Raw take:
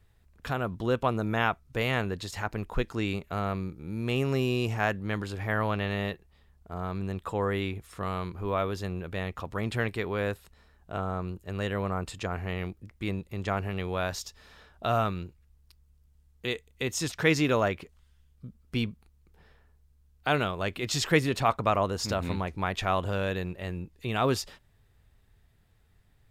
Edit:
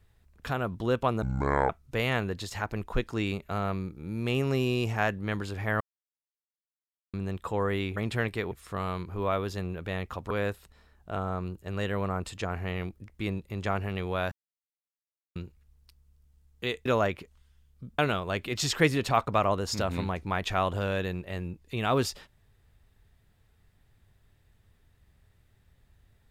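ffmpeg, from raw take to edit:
ffmpeg -i in.wav -filter_complex "[0:a]asplit=12[link_01][link_02][link_03][link_04][link_05][link_06][link_07][link_08][link_09][link_10][link_11][link_12];[link_01]atrim=end=1.224[link_13];[link_02]atrim=start=1.22:end=1.51,asetpts=PTS-STARTPTS,asetrate=26901,aresample=44100[link_14];[link_03]atrim=start=1.506:end=5.62,asetpts=PTS-STARTPTS,afade=type=out:start_time=4.11:duration=0.004:curve=hsin[link_15];[link_04]atrim=start=5.62:end=6.95,asetpts=PTS-STARTPTS,volume=0[link_16];[link_05]atrim=start=6.95:end=7.782,asetpts=PTS-STARTPTS,afade=type=in:duration=0.004:curve=hsin[link_17];[link_06]atrim=start=9.568:end=10.122[link_18];[link_07]atrim=start=7.778:end=9.572[link_19];[link_08]atrim=start=10.118:end=14.13,asetpts=PTS-STARTPTS,afade=type=out:start_time=4.008:duration=0.004:curve=hsin[link_20];[link_09]atrim=start=14.13:end=15.17,asetpts=PTS-STARTPTS,volume=0[link_21];[link_10]atrim=start=15.17:end=16.672,asetpts=PTS-STARTPTS,afade=type=in:duration=0.004:curve=hsin[link_22];[link_11]atrim=start=17.468:end=18.602[link_23];[link_12]atrim=start=20.298[link_24];[link_13][link_14]acrossfade=duration=0.004:curve1=hsin:curve2=hsin[link_25];[link_15][link_16][link_17]concat=n=3:v=0:a=1[link_26];[link_25][link_26]acrossfade=duration=0.004:curve1=hsin:curve2=hsin[link_27];[link_27][link_18]acrossfade=duration=0.004:curve1=hsin:curve2=hsin[link_28];[link_28][link_19]acrossfade=duration=0.004:curve1=hsin:curve2=hsin[link_29];[link_20][link_21][link_22]concat=n=3:v=0:a=1[link_30];[link_29][link_30]acrossfade=duration=0.004:curve1=hsin:curve2=hsin[link_31];[link_31][link_23]acrossfade=duration=0.004:curve1=hsin:curve2=hsin[link_32];[link_32][link_24]acrossfade=duration=0.004:curve1=hsin:curve2=hsin" out.wav

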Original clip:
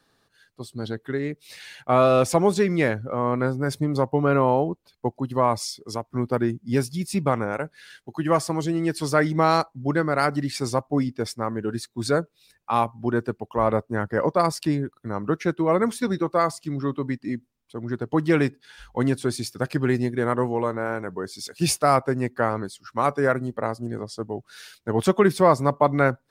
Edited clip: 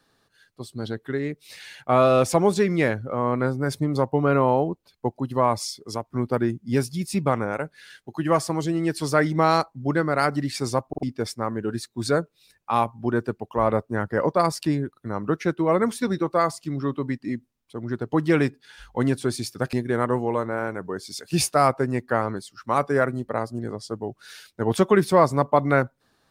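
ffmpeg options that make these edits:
ffmpeg -i in.wav -filter_complex "[0:a]asplit=5[link_01][link_02][link_03][link_04][link_05];[link_01]atrim=end=10.932[link_06];[link_02]atrim=start=10.878:end=10.932[link_07];[link_03]atrim=start=10.878:end=10.932[link_08];[link_04]atrim=start=11.028:end=19.732[link_09];[link_05]atrim=start=20.008[link_10];[link_06][link_07]acrossfade=duration=0.004:curve1=hsin:curve2=hsin[link_11];[link_11][link_08]acrossfade=duration=0.004:curve1=hsin:curve2=hsin[link_12];[link_12][link_09]acrossfade=duration=0.004:curve1=hsin:curve2=hsin[link_13];[link_13][link_10]acrossfade=duration=0.004:curve1=hsin:curve2=hsin" out.wav

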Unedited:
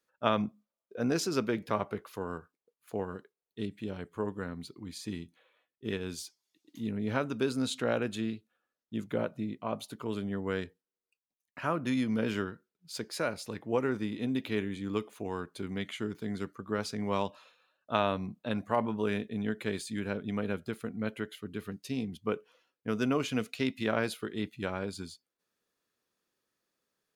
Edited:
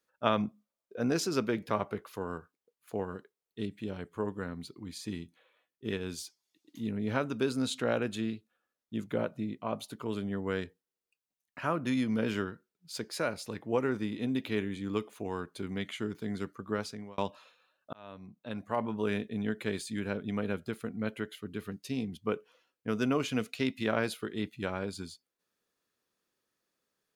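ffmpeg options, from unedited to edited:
ffmpeg -i in.wav -filter_complex "[0:a]asplit=3[link_01][link_02][link_03];[link_01]atrim=end=17.18,asetpts=PTS-STARTPTS,afade=type=out:start_time=16.73:duration=0.45[link_04];[link_02]atrim=start=17.18:end=17.93,asetpts=PTS-STARTPTS,afade=type=in:duration=0.004:curve=hsin,afade=type=out:start_time=0.746:duration=0.004:curve=hsin[link_05];[link_03]atrim=start=17.93,asetpts=PTS-STARTPTS,afade=type=in:duration=1.19[link_06];[link_04][link_05][link_06]concat=n=3:v=0:a=1" out.wav

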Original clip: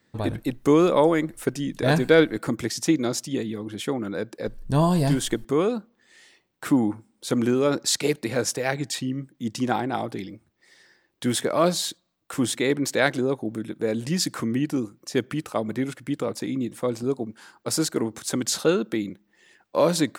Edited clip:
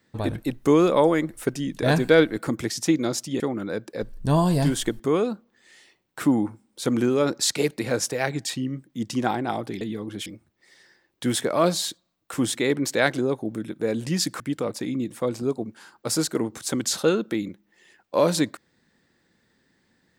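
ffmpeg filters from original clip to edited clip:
ffmpeg -i in.wav -filter_complex "[0:a]asplit=5[link_01][link_02][link_03][link_04][link_05];[link_01]atrim=end=3.402[link_06];[link_02]atrim=start=3.848:end=10.262[link_07];[link_03]atrim=start=3.398:end=3.852[link_08];[link_04]atrim=start=10.258:end=14.402[link_09];[link_05]atrim=start=16.008[link_10];[link_06][link_07]acrossfade=duration=0.004:curve1=hsin:curve2=hsin[link_11];[link_11][link_08]acrossfade=duration=0.004:curve1=hsin:curve2=hsin[link_12];[link_12][link_09]acrossfade=duration=0.004:curve1=hsin:curve2=hsin[link_13];[link_13][link_10]acrossfade=duration=0.004:curve1=hsin:curve2=hsin" out.wav

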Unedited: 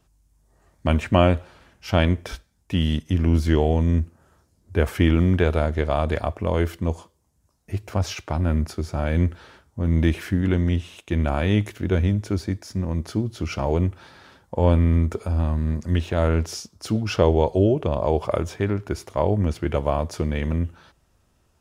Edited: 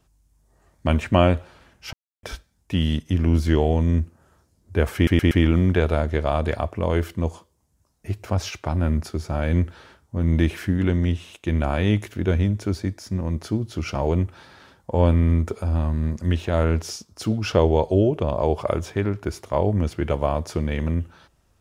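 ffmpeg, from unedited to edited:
ffmpeg -i in.wav -filter_complex "[0:a]asplit=6[link_01][link_02][link_03][link_04][link_05][link_06];[link_01]atrim=end=1.93,asetpts=PTS-STARTPTS,afade=type=out:start_time=1.926:duration=0.004:curve=hsin[link_07];[link_02]atrim=start=1.93:end=2.23,asetpts=PTS-STARTPTS,volume=0[link_08];[link_03]atrim=start=2.23:end=5.072,asetpts=PTS-STARTPTS,afade=type=in:duration=0.004:curve=hsin[link_09];[link_04]atrim=start=4.948:end=5.072[link_10];[link_05]atrim=start=4.948:end=5.072[link_11];[link_06]atrim=start=4.948[link_12];[link_07][link_08][link_09]concat=n=3:v=0:a=1[link_13];[link_13][link_10]acrossfade=duration=0.004:curve1=hsin:curve2=hsin[link_14];[link_14][link_11]acrossfade=duration=0.004:curve1=hsin:curve2=hsin[link_15];[link_15][link_12]acrossfade=duration=0.004:curve1=hsin:curve2=hsin" out.wav

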